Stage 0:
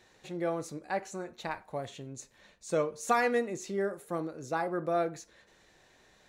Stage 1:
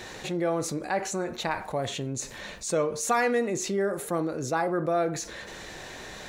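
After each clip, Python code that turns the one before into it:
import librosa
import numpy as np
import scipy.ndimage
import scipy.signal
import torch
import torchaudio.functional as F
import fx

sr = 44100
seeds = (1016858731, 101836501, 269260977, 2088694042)

y = fx.env_flatten(x, sr, amount_pct=50)
y = F.gain(torch.from_numpy(y), 1.0).numpy()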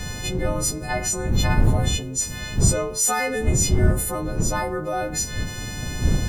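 y = fx.freq_snap(x, sr, grid_st=3)
y = fx.dmg_wind(y, sr, seeds[0], corner_hz=120.0, level_db=-23.0)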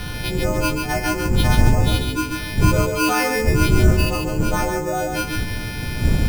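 y = fx.echo_feedback(x, sr, ms=141, feedback_pct=30, wet_db=-4.5)
y = np.repeat(y[::6], 6)[:len(y)]
y = F.gain(torch.from_numpy(y), 2.0).numpy()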